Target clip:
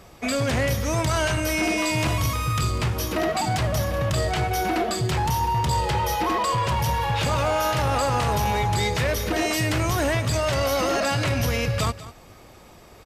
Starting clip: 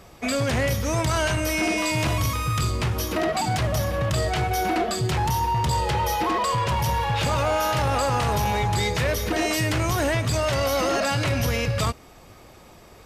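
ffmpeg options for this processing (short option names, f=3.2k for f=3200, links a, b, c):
-af "aecho=1:1:196:0.158"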